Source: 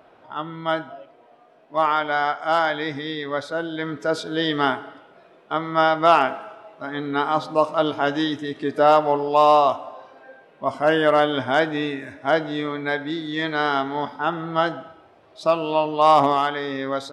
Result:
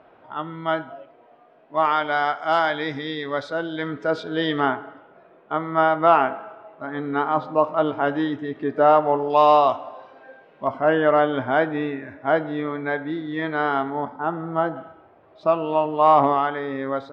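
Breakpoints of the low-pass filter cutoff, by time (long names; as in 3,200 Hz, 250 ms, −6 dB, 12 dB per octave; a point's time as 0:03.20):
2,900 Hz
from 0:01.85 5,200 Hz
from 0:03.88 3,200 Hz
from 0:04.60 1,900 Hz
from 0:09.30 4,000 Hz
from 0:10.67 1,900 Hz
from 0:13.90 1,200 Hz
from 0:14.76 1,900 Hz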